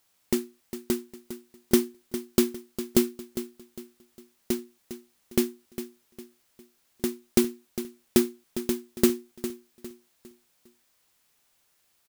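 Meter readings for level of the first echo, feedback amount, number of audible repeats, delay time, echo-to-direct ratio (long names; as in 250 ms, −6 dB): −12.0 dB, 36%, 3, 405 ms, −11.5 dB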